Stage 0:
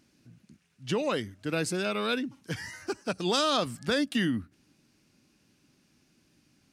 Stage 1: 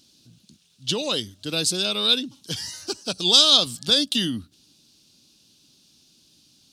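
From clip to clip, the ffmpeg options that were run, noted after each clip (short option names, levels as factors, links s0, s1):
-af "highshelf=f=2700:t=q:w=3:g=10,volume=1.12"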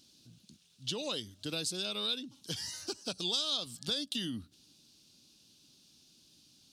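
-af "acompressor=threshold=0.0282:ratio=2.5,volume=0.562"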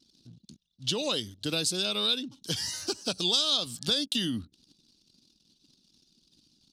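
-af "anlmdn=0.0000398,volume=2.24"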